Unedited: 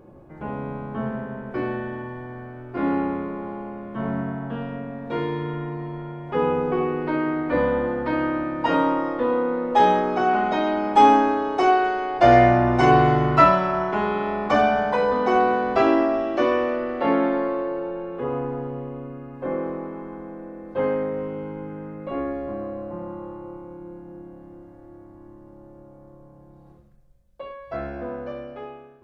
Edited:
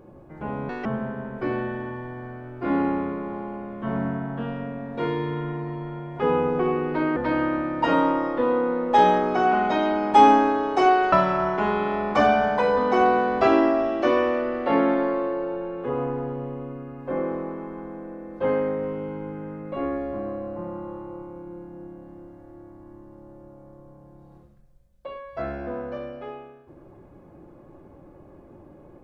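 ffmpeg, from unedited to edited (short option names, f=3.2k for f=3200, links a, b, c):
-filter_complex "[0:a]asplit=5[a][b][c][d][e];[a]atrim=end=0.694[f];[b]atrim=start=0.69:end=0.98,asetpts=PTS-STARTPTS,asetrate=78057,aresample=44100,atrim=end_sample=7225,asetpts=PTS-STARTPTS[g];[c]atrim=start=0.976:end=7.292[h];[d]atrim=start=7.978:end=11.942[i];[e]atrim=start=13.468[j];[f][g]acrossfade=d=0.004:c1=hsin:c2=hsin[k];[k][h]acrossfade=d=0.004:c1=hsin:c2=hsin[l];[l][i]acrossfade=d=0.004:c1=hsin:c2=hsin[m];[m][j]acrossfade=d=0.004:c1=hsin:c2=hsin"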